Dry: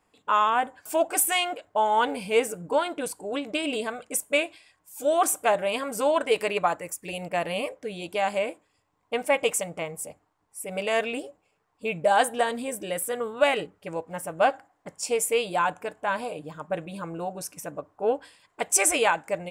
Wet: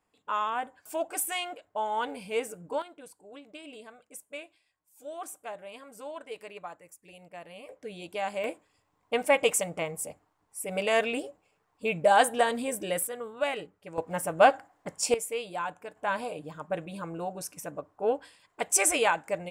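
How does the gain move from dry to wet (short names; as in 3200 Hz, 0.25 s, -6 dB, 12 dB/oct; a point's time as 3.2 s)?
-8 dB
from 2.82 s -17.5 dB
from 7.69 s -6.5 dB
from 8.44 s 0 dB
from 13.07 s -8 dB
from 13.98 s +2.5 dB
from 15.14 s -9 dB
from 15.96 s -2.5 dB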